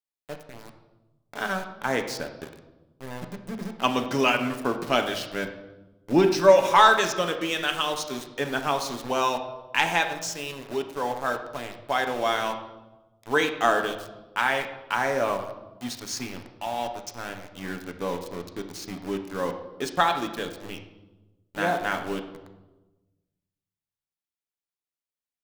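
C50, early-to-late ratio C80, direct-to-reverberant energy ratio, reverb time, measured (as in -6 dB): 9.0 dB, 11.0 dB, 4.5 dB, 1.1 s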